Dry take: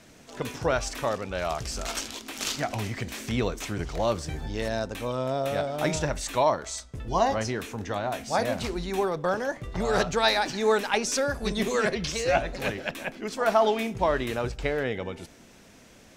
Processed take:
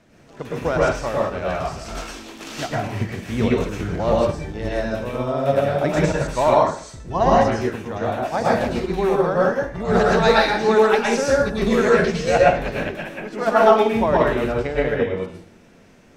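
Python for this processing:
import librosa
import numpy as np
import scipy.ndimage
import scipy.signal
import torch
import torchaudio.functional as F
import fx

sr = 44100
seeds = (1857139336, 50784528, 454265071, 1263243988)

y = fx.high_shelf(x, sr, hz=3000.0, db=-12.0)
y = fx.rev_plate(y, sr, seeds[0], rt60_s=0.54, hf_ratio=0.95, predelay_ms=95, drr_db=-4.5)
y = fx.upward_expand(y, sr, threshold_db=-32.0, expansion=1.5)
y = y * 10.0 ** (6.5 / 20.0)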